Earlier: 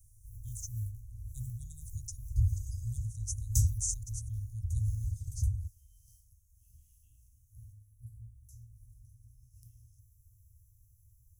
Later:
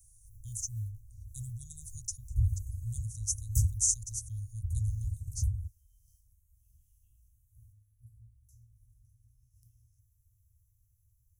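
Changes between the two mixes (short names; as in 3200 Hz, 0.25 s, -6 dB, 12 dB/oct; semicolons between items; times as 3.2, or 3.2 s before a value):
speech: add high shelf 2200 Hz +7.5 dB; first sound -7.0 dB; second sound: add Butterworth band-stop 3600 Hz, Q 0.5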